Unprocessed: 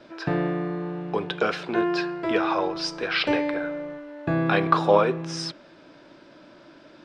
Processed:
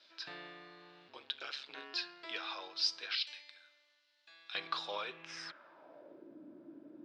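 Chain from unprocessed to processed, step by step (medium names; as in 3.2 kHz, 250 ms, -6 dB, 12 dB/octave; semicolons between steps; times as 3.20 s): 1.08–1.94 s: ring modulator 69 Hz; 3.15–4.55 s: differentiator; band-pass sweep 4.2 kHz -> 290 Hz, 5.01–6.36 s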